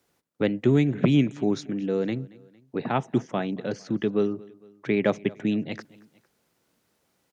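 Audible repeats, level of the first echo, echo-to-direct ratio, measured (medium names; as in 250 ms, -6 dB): 2, -23.0 dB, -22.0 dB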